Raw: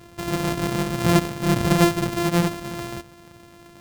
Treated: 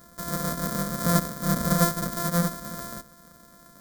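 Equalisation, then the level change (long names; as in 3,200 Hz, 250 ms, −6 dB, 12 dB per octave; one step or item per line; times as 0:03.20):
high-shelf EQ 9,600 Hz +10 dB
phaser with its sweep stopped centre 540 Hz, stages 8
notch filter 2,100 Hz, Q 26
−1.0 dB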